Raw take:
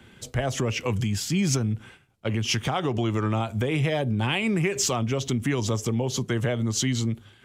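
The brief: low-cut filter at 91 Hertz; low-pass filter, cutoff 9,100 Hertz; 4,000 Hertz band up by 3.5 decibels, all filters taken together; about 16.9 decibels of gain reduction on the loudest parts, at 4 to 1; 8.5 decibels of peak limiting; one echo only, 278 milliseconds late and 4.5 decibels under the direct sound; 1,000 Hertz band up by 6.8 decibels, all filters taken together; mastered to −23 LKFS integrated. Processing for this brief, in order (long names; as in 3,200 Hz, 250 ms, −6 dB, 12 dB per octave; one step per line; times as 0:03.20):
high-pass filter 91 Hz
low-pass filter 9,100 Hz
parametric band 1,000 Hz +9 dB
parametric band 4,000 Hz +4.5 dB
downward compressor 4 to 1, threshold −40 dBFS
brickwall limiter −31 dBFS
single-tap delay 278 ms −4.5 dB
level +17 dB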